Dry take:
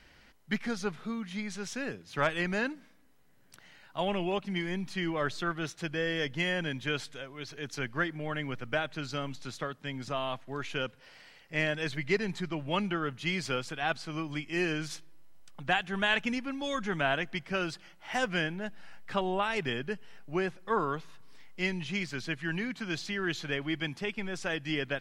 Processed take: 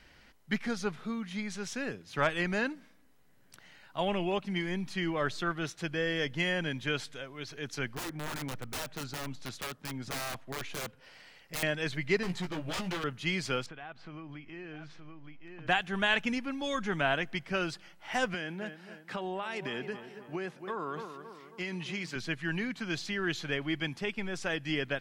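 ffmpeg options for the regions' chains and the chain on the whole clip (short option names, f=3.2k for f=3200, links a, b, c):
-filter_complex "[0:a]asettb=1/sr,asplit=3[a][b][c];[a]atrim=end=7.954[d];[b]atrim=start=7.95:end=11.63,asetpts=PTS-STARTPTS,afade=t=in:d=0.004:c=qsin,afade=t=out:st=3.676:d=0.004:c=qsin,aeval=exprs='(mod(28.2*val(0)+1,2)-1)/28.2':c=same,adynamicequalizer=threshold=0.00355:dfrequency=1700:dqfactor=0.7:tfrequency=1700:tqfactor=0.7:attack=5:release=100:ratio=0.375:range=3:mode=cutabove:tftype=highshelf[e];[c]atrim=start=11.626[f];[d][e]acrossfade=d=0.004:c1=hsin:c2=qsin[g];[g][f]acrossfade=d=0.004:c1=qsin:c2=hsin,asettb=1/sr,asplit=3[h][i][j];[h]atrim=end=12.234[k];[i]atrim=start=12.23:end=13.04,asetpts=PTS-STARTPTS,afade=t=in:d=0.004:c=qsin,afade=t=out:st=0.806:d=0.004:c=qsin,aeval=exprs='0.0299*(abs(mod(val(0)/0.0299+3,4)-2)-1)':c=same,asplit=2[l][m];[m]adelay=17,volume=-5.5dB[n];[l][n]amix=inputs=2:normalize=0,atrim=end_sample=35721[o];[j]atrim=start=13.036[p];[k][o]acrossfade=d=0.004:c1=hsin:c2=qsin[q];[q][p]acrossfade=d=0.004:c1=qsin:c2=hsin,asettb=1/sr,asplit=3[r][s][t];[r]atrim=end=13.664[u];[s]atrim=start=13.66:end=15.67,asetpts=PTS-STARTPTS,afade=t=in:d=0.004:c=qsin,afade=t=out:st=2.006:d=0.004:c=qsin,aecho=1:1:919:0.211,atrim=end_sample=88641,acompressor=threshold=-42dB:ratio=4:attack=3.2:release=140:knee=1:detection=peak,lowpass=2.5k[v];[t]atrim=start=15.666[w];[u][v]acrossfade=d=0.004:c1=hsin:c2=qsin[x];[x][w]acrossfade=d=0.004:c1=qsin:c2=hsin,asettb=1/sr,asplit=3[y][z][aa];[y]atrim=end=18.344[ab];[z]atrim=start=18.34:end=22.16,asetpts=PTS-STARTPTS,afade=t=in:d=0.004:c=qsin,afade=t=out:st=3.816:d=0.004:c=qsin,highpass=160,asplit=2[ac][ad];[ad]adelay=270,lowpass=f=1.9k:p=1,volume=-13.5dB,asplit=2[ae][af];[af]adelay=270,lowpass=f=1.9k:p=1,volume=0.52,asplit=2[ag][ah];[ah]adelay=270,lowpass=f=1.9k:p=1,volume=0.52,asplit=2[ai][aj];[aj]adelay=270,lowpass=f=1.9k:p=1,volume=0.52,asplit=2[ak][al];[al]adelay=270,lowpass=f=1.9k:p=1,volume=0.52[am];[ac][ae][ag][ai][ak][am]amix=inputs=6:normalize=0,atrim=end_sample=168462,acompressor=threshold=-31dB:ratio=10:attack=3.2:release=140:knee=1:detection=peak[an];[aa]atrim=start=22.156[ao];[ab][an]acrossfade=d=0.004:c1=hsin:c2=qsin[ap];[ap][ao]acrossfade=d=0.004:c1=qsin:c2=hsin"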